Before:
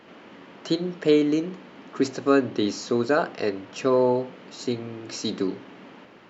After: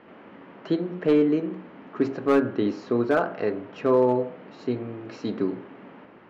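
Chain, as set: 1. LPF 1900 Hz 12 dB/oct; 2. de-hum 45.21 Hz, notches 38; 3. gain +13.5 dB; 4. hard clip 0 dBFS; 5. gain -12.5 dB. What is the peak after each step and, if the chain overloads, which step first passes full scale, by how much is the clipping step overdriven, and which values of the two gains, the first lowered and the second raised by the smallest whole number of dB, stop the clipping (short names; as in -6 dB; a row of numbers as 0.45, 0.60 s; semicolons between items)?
-6.5, -8.0, +5.5, 0.0, -12.5 dBFS; step 3, 5.5 dB; step 3 +7.5 dB, step 5 -6.5 dB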